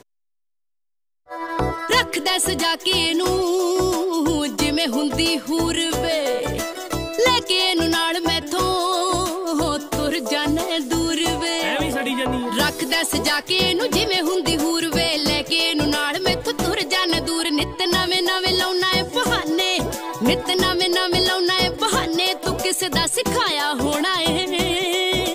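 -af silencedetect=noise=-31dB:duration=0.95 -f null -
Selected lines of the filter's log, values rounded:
silence_start: 0.00
silence_end: 1.31 | silence_duration: 1.31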